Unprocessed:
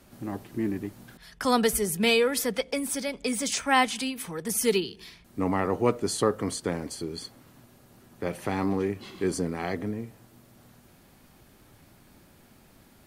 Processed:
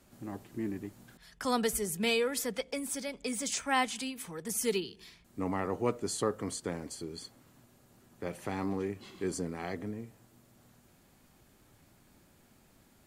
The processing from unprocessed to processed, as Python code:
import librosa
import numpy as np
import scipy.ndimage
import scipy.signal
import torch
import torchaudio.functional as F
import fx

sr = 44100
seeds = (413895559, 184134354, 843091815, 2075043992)

y = fx.peak_eq(x, sr, hz=7300.0, db=5.0, octaves=0.36)
y = y * 10.0 ** (-7.0 / 20.0)